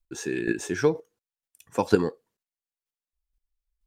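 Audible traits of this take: chopped level 2.1 Hz, depth 60%, duty 10%

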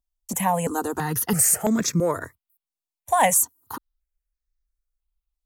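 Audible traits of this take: notches that jump at a steady rate 3 Hz 440–3000 Hz

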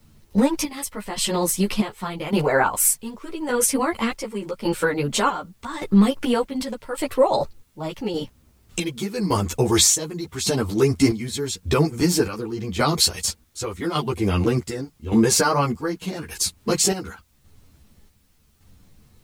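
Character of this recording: chopped level 0.86 Hz, depth 65%, duty 55%; a quantiser's noise floor 12-bit, dither triangular; a shimmering, thickened sound

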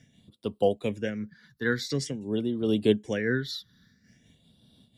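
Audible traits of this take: phasing stages 6, 0.48 Hz, lowest notch 660–1800 Hz; random flutter of the level

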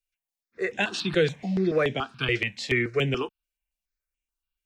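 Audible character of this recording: notches that jump at a steady rate 7 Hz 250–4500 Hz

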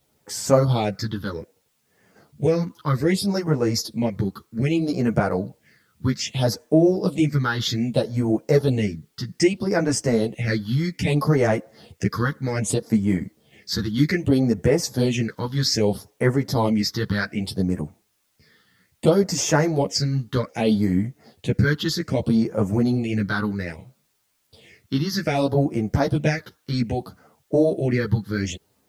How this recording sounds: phasing stages 6, 0.63 Hz, lowest notch 620–3900 Hz; a quantiser's noise floor 12-bit, dither triangular; a shimmering, thickened sound

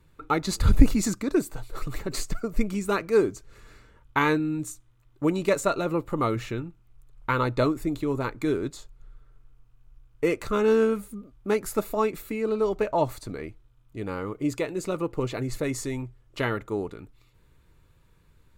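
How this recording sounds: noise floor -60 dBFS; spectral tilt -5.5 dB/octave

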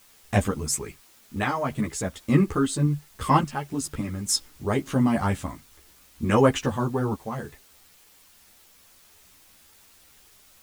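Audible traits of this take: random-step tremolo, depth 70%; a quantiser's noise floor 10-bit, dither triangular; a shimmering, thickened sound

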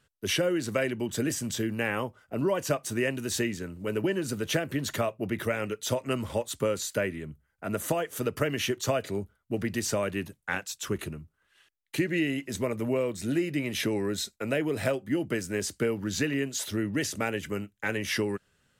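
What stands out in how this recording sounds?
noise floor -74 dBFS; spectral tilt -4.5 dB/octave

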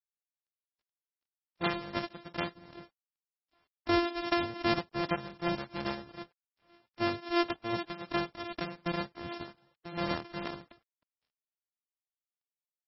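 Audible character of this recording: a buzz of ramps at a fixed pitch in blocks of 128 samples; tremolo triangle 2.6 Hz, depth 85%; a quantiser's noise floor 12-bit, dither none; MP3

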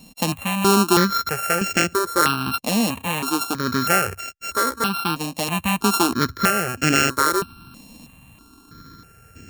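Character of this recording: a buzz of ramps at a fixed pitch in blocks of 32 samples; random-step tremolo 3.1 Hz; notches that jump at a steady rate 3.1 Hz 380–3800 Hz

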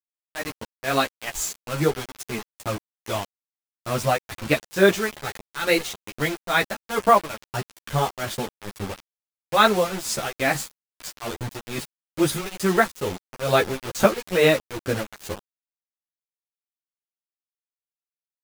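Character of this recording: tremolo triangle 2.3 Hz, depth 95%; a quantiser's noise floor 6-bit, dither none; a shimmering, thickened sound

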